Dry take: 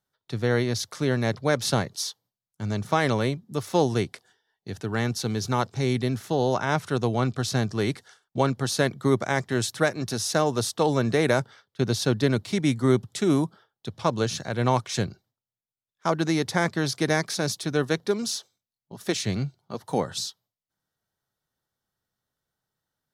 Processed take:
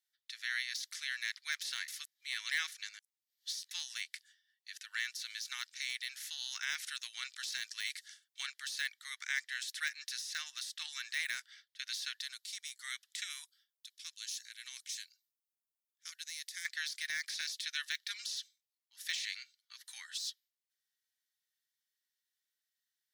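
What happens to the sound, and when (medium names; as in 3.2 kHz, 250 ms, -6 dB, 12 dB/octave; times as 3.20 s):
1.88–3.71 s: reverse
6.20–8.46 s: treble shelf 3.6 kHz +4.5 dB
8.99–10.93 s: treble shelf 6 kHz -4 dB
12.21–12.80 s: peaking EQ 2.1 kHz -13 dB 1.3 oct
13.45–16.65 s: pre-emphasis filter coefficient 0.9
17.21–19.26 s: dynamic bell 3.4 kHz, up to +4 dB, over -43 dBFS, Q 0.79
whole clip: elliptic high-pass 1.8 kHz, stop band 80 dB; de-esser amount 80%; trim -1 dB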